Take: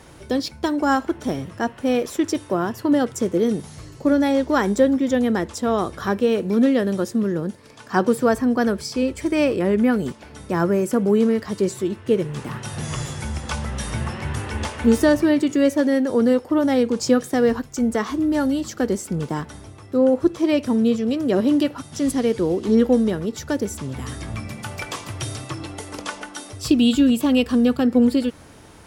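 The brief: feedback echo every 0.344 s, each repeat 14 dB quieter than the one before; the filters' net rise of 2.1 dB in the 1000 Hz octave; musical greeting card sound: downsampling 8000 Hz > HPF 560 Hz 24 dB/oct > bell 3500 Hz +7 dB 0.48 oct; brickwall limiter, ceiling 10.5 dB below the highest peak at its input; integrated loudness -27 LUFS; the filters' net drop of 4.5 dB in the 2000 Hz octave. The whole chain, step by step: bell 1000 Hz +5 dB; bell 2000 Hz -9 dB; limiter -13.5 dBFS; feedback echo 0.344 s, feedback 20%, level -14 dB; downsampling 8000 Hz; HPF 560 Hz 24 dB/oct; bell 3500 Hz +7 dB 0.48 oct; gain +5 dB

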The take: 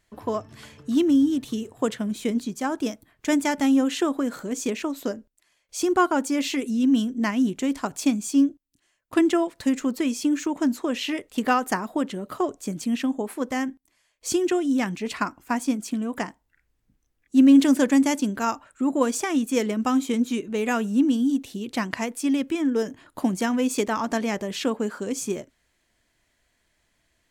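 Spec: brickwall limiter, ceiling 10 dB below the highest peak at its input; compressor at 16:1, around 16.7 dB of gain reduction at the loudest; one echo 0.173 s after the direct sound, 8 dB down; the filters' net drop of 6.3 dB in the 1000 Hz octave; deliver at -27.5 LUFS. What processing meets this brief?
bell 1000 Hz -8.5 dB; compressor 16:1, threshold -28 dBFS; limiter -25.5 dBFS; echo 0.173 s -8 dB; gain +7 dB

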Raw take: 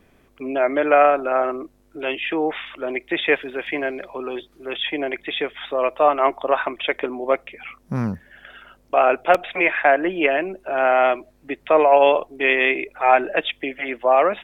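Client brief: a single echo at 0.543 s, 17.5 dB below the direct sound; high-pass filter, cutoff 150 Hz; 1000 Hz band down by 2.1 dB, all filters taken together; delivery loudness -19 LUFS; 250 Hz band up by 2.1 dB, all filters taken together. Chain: HPF 150 Hz; bell 250 Hz +3.5 dB; bell 1000 Hz -3.5 dB; echo 0.543 s -17.5 dB; gain +2 dB

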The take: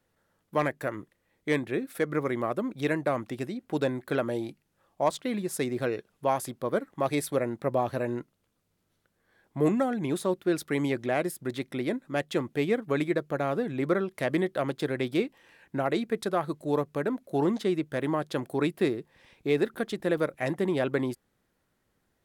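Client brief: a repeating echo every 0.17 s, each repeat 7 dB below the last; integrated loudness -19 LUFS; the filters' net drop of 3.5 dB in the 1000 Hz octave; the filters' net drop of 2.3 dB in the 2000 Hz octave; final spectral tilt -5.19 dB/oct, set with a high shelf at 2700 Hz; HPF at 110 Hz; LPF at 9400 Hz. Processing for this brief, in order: HPF 110 Hz; LPF 9400 Hz; bell 1000 Hz -5 dB; bell 2000 Hz -3.5 dB; high shelf 2700 Hz +5.5 dB; feedback echo 0.17 s, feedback 45%, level -7 dB; gain +11 dB

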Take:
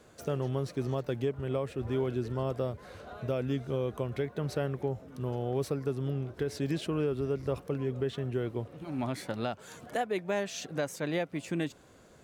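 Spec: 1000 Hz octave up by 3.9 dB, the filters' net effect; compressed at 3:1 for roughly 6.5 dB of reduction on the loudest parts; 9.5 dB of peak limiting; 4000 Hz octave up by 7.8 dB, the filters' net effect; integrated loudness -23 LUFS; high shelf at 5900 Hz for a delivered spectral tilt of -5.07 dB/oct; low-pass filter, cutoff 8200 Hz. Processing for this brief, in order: LPF 8200 Hz; bell 1000 Hz +5 dB; bell 4000 Hz +7.5 dB; high shelf 5900 Hz +6.5 dB; compressor 3:1, threshold -34 dBFS; gain +18 dB; limiter -12.5 dBFS

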